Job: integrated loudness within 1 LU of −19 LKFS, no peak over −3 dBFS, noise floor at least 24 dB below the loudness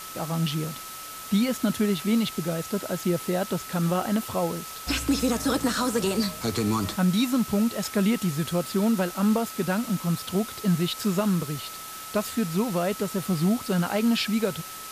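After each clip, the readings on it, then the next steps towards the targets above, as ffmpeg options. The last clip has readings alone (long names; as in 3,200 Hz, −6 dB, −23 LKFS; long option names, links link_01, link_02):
interfering tone 1,300 Hz; level of the tone −41 dBFS; background noise floor −39 dBFS; target noise floor −50 dBFS; integrated loudness −26.0 LKFS; sample peak −13.0 dBFS; target loudness −19.0 LKFS
→ -af "bandreject=frequency=1300:width=30"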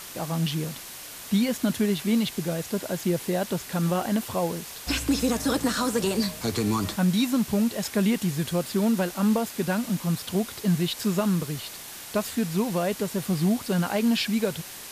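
interfering tone none found; background noise floor −41 dBFS; target noise floor −50 dBFS
→ -af "afftdn=noise_reduction=9:noise_floor=-41"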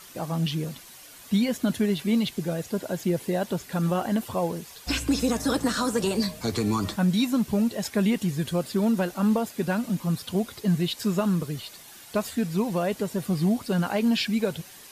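background noise floor −47 dBFS; target noise floor −51 dBFS
→ -af "afftdn=noise_reduction=6:noise_floor=-47"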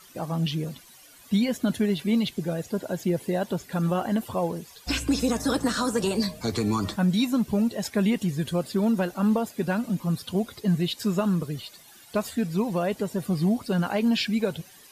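background noise floor −51 dBFS; integrated loudness −26.5 LKFS; sample peak −14.0 dBFS; target loudness −19.0 LKFS
→ -af "volume=7.5dB"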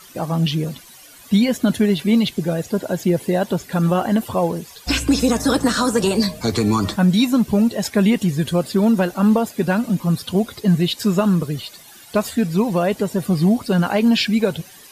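integrated loudness −19.0 LKFS; sample peak −6.5 dBFS; background noise floor −44 dBFS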